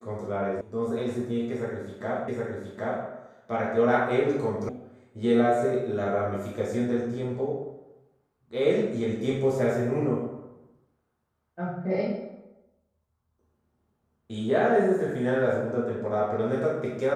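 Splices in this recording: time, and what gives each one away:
0:00.61: cut off before it has died away
0:02.28: the same again, the last 0.77 s
0:04.69: cut off before it has died away

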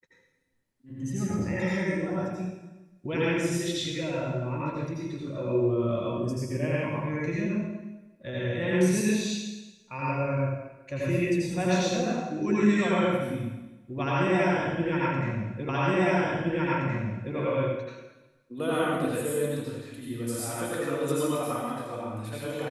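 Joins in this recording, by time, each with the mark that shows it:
0:15.69: the same again, the last 1.67 s

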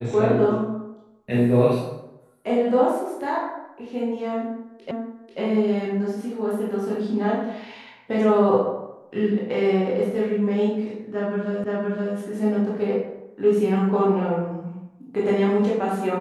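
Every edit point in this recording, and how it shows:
0:04.91: the same again, the last 0.49 s
0:11.64: the same again, the last 0.52 s

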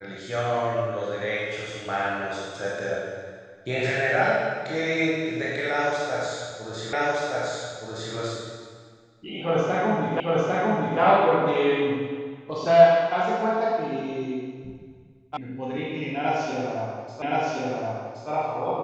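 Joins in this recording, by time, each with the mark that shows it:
0:06.93: the same again, the last 1.22 s
0:10.20: the same again, the last 0.8 s
0:15.37: cut off before it has died away
0:17.22: the same again, the last 1.07 s

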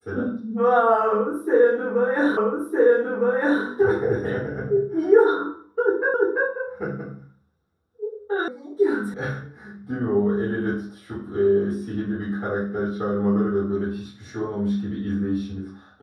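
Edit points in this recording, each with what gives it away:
0:02.37: the same again, the last 1.26 s
0:06.14: the same again, the last 0.34 s
0:08.48: cut off before it has died away
0:09.14: cut off before it has died away

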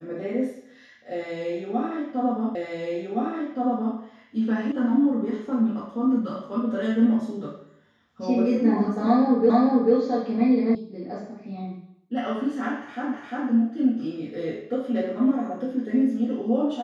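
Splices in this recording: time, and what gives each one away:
0:02.55: the same again, the last 1.42 s
0:04.72: cut off before it has died away
0:09.50: the same again, the last 0.44 s
0:10.75: cut off before it has died away
0:13.14: the same again, the last 0.35 s

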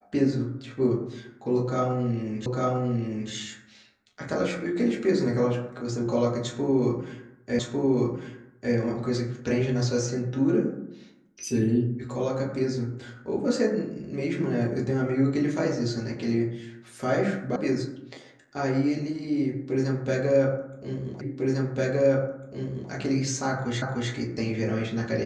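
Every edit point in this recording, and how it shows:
0:02.46: the same again, the last 0.85 s
0:07.59: the same again, the last 1.15 s
0:17.56: cut off before it has died away
0:21.21: the same again, the last 1.7 s
0:23.82: the same again, the last 0.3 s

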